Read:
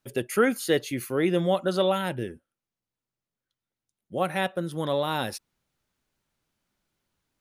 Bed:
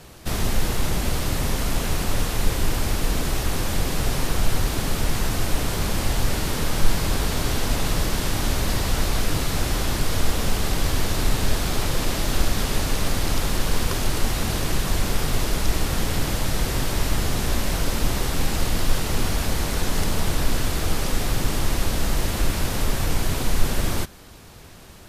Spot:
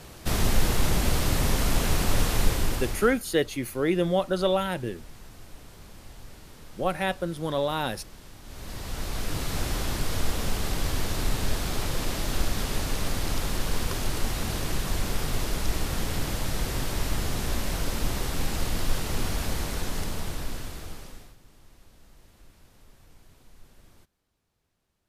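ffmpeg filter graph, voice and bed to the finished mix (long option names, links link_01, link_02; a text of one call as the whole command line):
ffmpeg -i stem1.wav -i stem2.wav -filter_complex "[0:a]adelay=2650,volume=-0.5dB[link_01];[1:a]volume=17.5dB,afade=type=out:start_time=2.37:duration=0.83:silence=0.0707946,afade=type=in:start_time=8.44:duration=1.14:silence=0.125893,afade=type=out:start_time=19.52:duration=1.84:silence=0.0446684[link_02];[link_01][link_02]amix=inputs=2:normalize=0" out.wav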